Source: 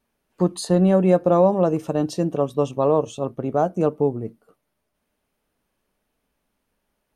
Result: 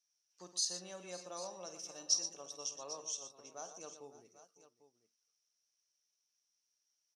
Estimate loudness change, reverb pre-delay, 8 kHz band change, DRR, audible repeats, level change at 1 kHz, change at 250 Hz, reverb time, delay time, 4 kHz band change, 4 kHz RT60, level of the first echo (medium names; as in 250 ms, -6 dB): -19.0 dB, no reverb, +3.0 dB, no reverb, 4, -26.0 dB, -37.0 dB, no reverb, 50 ms, -0.5 dB, no reverb, -12.0 dB